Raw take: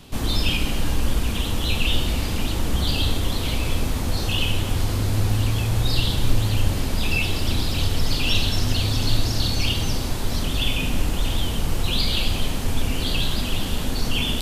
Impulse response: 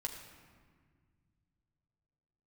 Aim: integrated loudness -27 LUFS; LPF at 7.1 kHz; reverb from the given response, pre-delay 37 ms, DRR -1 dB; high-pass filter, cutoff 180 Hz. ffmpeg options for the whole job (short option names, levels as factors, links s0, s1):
-filter_complex "[0:a]highpass=180,lowpass=7100,asplit=2[s0][s1];[1:a]atrim=start_sample=2205,adelay=37[s2];[s1][s2]afir=irnorm=-1:irlink=0,volume=1.19[s3];[s0][s3]amix=inputs=2:normalize=0,volume=0.668"